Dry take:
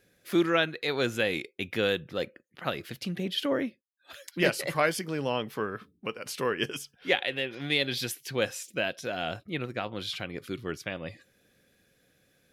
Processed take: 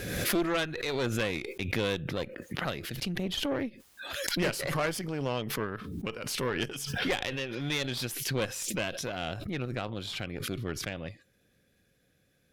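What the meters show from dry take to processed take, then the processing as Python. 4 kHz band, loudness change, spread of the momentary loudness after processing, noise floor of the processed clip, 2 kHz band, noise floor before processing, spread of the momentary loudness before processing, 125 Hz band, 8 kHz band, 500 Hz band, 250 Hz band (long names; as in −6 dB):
−1.5 dB, −2.0 dB, 7 LU, −70 dBFS, −3.0 dB, −69 dBFS, 10 LU, +3.0 dB, +4.0 dB, −3.5 dB, −1.0 dB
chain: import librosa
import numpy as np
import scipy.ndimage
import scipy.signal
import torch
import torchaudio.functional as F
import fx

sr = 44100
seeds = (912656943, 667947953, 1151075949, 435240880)

y = fx.low_shelf(x, sr, hz=160.0, db=8.5)
y = fx.tube_stage(y, sr, drive_db=23.0, bias=0.8)
y = fx.pre_swell(y, sr, db_per_s=37.0)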